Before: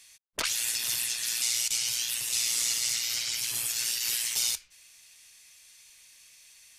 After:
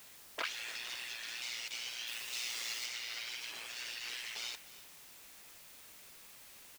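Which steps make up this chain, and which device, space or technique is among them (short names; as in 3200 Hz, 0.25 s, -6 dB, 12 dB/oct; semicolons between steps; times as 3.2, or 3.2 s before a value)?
wax cylinder (BPF 390–2700 Hz; wow and flutter; white noise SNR 11 dB); 2.07–2.86 high shelf 5900 Hz +7 dB; echo 0.299 s -17.5 dB; gain -3 dB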